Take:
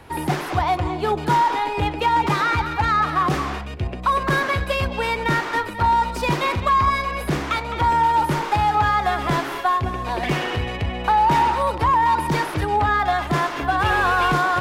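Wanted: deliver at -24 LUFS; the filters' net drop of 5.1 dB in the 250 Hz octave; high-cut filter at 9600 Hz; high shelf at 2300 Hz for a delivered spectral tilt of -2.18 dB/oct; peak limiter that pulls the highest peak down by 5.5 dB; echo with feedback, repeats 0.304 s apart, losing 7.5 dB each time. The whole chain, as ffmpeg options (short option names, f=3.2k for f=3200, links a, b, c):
-af "lowpass=9.6k,equalizer=f=250:t=o:g=-8.5,highshelf=f=2.3k:g=6,alimiter=limit=-12dB:level=0:latency=1,aecho=1:1:304|608|912|1216|1520:0.422|0.177|0.0744|0.0312|0.0131,volume=-3.5dB"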